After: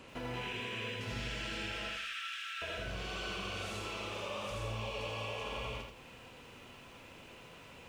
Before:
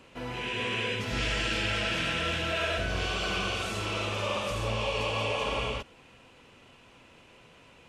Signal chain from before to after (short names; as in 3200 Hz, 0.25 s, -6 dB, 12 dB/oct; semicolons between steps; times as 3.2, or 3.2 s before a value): compressor 5:1, threshold -41 dBFS, peak gain reduction 13.5 dB; 1.89–2.62 brick-wall FIR high-pass 1100 Hz; lo-fi delay 81 ms, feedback 35%, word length 11-bit, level -4 dB; gain +1 dB